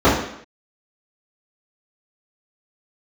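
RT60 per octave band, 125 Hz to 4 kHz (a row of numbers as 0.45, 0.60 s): 0.55, 0.65, 0.65, 0.70, 0.75, 0.70 s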